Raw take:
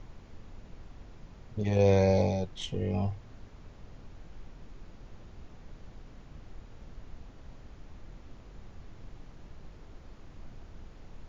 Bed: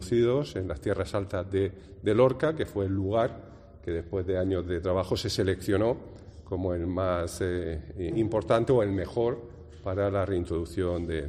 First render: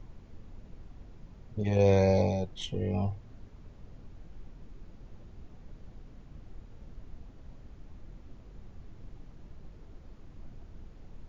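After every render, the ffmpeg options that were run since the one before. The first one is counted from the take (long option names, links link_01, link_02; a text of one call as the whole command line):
ffmpeg -i in.wav -af "afftdn=noise_reduction=6:noise_floor=-52" out.wav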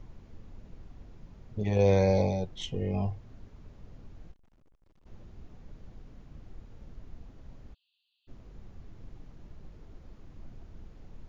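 ffmpeg -i in.wav -filter_complex "[0:a]asplit=3[link_01][link_02][link_03];[link_01]afade=type=out:start_time=4.31:duration=0.02[link_04];[link_02]aeval=exprs='(tanh(1410*val(0)+0.7)-tanh(0.7))/1410':channel_layout=same,afade=type=in:start_time=4.31:duration=0.02,afade=type=out:start_time=5.05:duration=0.02[link_05];[link_03]afade=type=in:start_time=5.05:duration=0.02[link_06];[link_04][link_05][link_06]amix=inputs=3:normalize=0,asplit=3[link_07][link_08][link_09];[link_07]afade=type=out:start_time=7.73:duration=0.02[link_10];[link_08]asuperpass=centerf=3500:order=20:qfactor=1.7,afade=type=in:start_time=7.73:duration=0.02,afade=type=out:start_time=8.27:duration=0.02[link_11];[link_09]afade=type=in:start_time=8.27:duration=0.02[link_12];[link_10][link_11][link_12]amix=inputs=3:normalize=0" out.wav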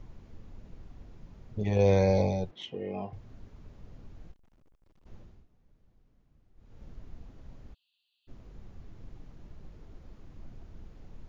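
ffmpeg -i in.wav -filter_complex "[0:a]asettb=1/sr,asplit=3[link_01][link_02][link_03];[link_01]atrim=end=2.514[link_04];[link_02]atrim=start=2.51:end=3.13,asetpts=PTS-STARTPTS,afade=type=in:duration=0.004:curve=qsin,afade=type=out:start_time=0.616:duration=0.004:curve=qsin,highpass=270,lowpass=3100[link_05];[link_03]atrim=start=3.126[link_06];[link_04][link_05]acrossfade=duration=0.004:curve1=hsin:curve2=qsin[link_07];[link_07][link_06]acrossfade=duration=0.004:curve1=qsin:curve2=hsin,asplit=3[link_08][link_09][link_10];[link_08]atrim=end=5.46,asetpts=PTS-STARTPTS,afade=type=out:start_time=5.16:duration=0.3:silence=0.141254[link_11];[link_09]atrim=start=5.46:end=6.55,asetpts=PTS-STARTPTS,volume=-17dB[link_12];[link_10]atrim=start=6.55,asetpts=PTS-STARTPTS,afade=type=in:duration=0.3:silence=0.141254[link_13];[link_11][link_12][link_13]concat=n=3:v=0:a=1" out.wav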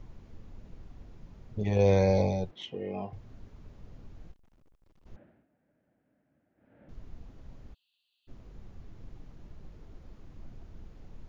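ffmpeg -i in.wav -filter_complex "[0:a]asettb=1/sr,asplit=3[link_01][link_02][link_03];[link_01]atrim=end=5.164[link_04];[link_02]atrim=start=5.16:end=6.89,asetpts=PTS-STARTPTS,afade=type=in:duration=0.004:curve=qsin,afade=type=out:start_time=1.726:duration=0.004:curve=qsin,highpass=200,equalizer=frequency=280:width_type=q:width=4:gain=6,equalizer=frequency=410:width_type=q:width=4:gain=-5,equalizer=frequency=610:width_type=q:width=4:gain=9,equalizer=frequency=1100:width_type=q:width=4:gain=-8,equalizer=frequency=1600:width_type=q:width=4:gain=8,lowpass=frequency=2500:width=0.5412,lowpass=frequency=2500:width=1.3066[link_05];[link_03]atrim=start=6.886[link_06];[link_04][link_05]acrossfade=duration=0.004:curve1=hsin:curve2=qsin[link_07];[link_07][link_06]acrossfade=duration=0.004:curve1=qsin:curve2=hsin" out.wav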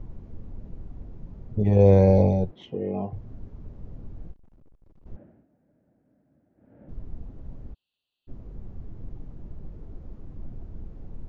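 ffmpeg -i in.wav -af "tiltshelf=frequency=1200:gain=9" out.wav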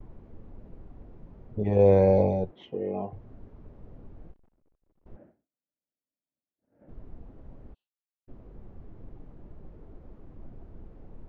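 ffmpeg -i in.wav -af "agate=range=-33dB:threshold=-46dB:ratio=3:detection=peak,bass=frequency=250:gain=-8,treble=frequency=4000:gain=-11" out.wav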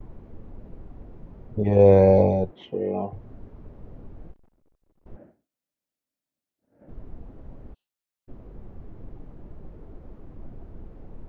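ffmpeg -i in.wav -af "volume=4.5dB" out.wav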